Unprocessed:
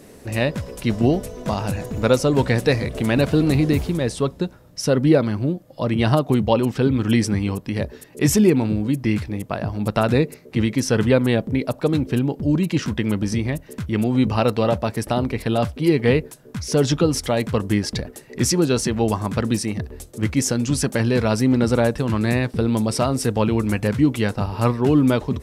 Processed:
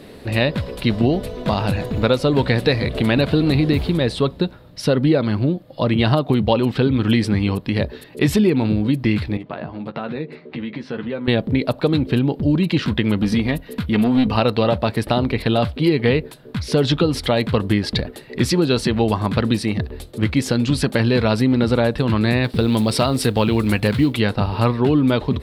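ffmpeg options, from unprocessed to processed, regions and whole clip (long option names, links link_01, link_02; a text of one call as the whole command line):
ffmpeg -i in.wav -filter_complex "[0:a]asettb=1/sr,asplit=3[link_01][link_02][link_03];[link_01]atrim=end=9.374[link_04];[link_02]atrim=start=9.37:end=11.28,asetpts=PTS-STARTPTS,afade=type=in:duration=0.004:curve=qsin,afade=type=out:start_time=1.906:duration=0.004:curve=qsin,acompressor=threshold=-30dB:ratio=4:attack=3.2:release=140:knee=1:detection=peak,highpass=150,lowpass=2800,asplit=2[link_05][link_06];[link_06]adelay=13,volume=-6dB[link_07];[link_05][link_07]amix=inputs=2:normalize=0,atrim=end_sample=84231[link_08];[link_03]atrim=start=11.276[link_09];[link_04][link_08]acrossfade=duration=0.004:curve1=hsin:curve2=qsin[link_10];[link_10][link_09]acrossfade=duration=0.004:curve1=qsin:curve2=hsin,asettb=1/sr,asplit=3[link_11][link_12][link_13];[link_11]atrim=end=13.184[link_14];[link_12]atrim=start=13.18:end=14.37,asetpts=PTS-STARTPTS,afade=type=in:duration=0.004:curve=qsin,afade=type=out:start_time=1.186:duration=0.004:curve=qsin,equalizer=frequency=12000:width_type=o:width=0.23:gain=7.5,aecho=1:1:4.2:0.43,atrim=end_sample=52479,aeval=exprs='clip(val(0),-1,0.188)':channel_layout=same[link_15];[link_13]atrim=start=14.366[link_16];[link_14][link_15]acrossfade=duration=0.004:curve1=hsin:curve2=qsin[link_17];[link_17][link_16]acrossfade=duration=0.004:curve1=qsin:curve2=hsin,asettb=1/sr,asplit=3[link_18][link_19][link_20];[link_18]atrim=end=22.444[link_21];[link_19]atrim=start=22.44:end=24.17,asetpts=PTS-STARTPTS,afade=type=in:duration=0.004:curve=qsin,afade=type=out:start_time=1.726:duration=0.004:curve=qsin,highshelf=frequency=3900:gain=7.5,acrusher=bits=7:mode=log:mix=0:aa=0.000001[link_22];[link_20]atrim=start=24.166[link_23];[link_21][link_22]acrossfade=duration=0.004:curve1=hsin:curve2=qsin[link_24];[link_24][link_23]acrossfade=duration=0.004:curve1=qsin:curve2=hsin,highshelf=frequency=5000:width_type=q:width=3:gain=-7,acompressor=threshold=-18dB:ratio=3,volume=4.5dB" out.wav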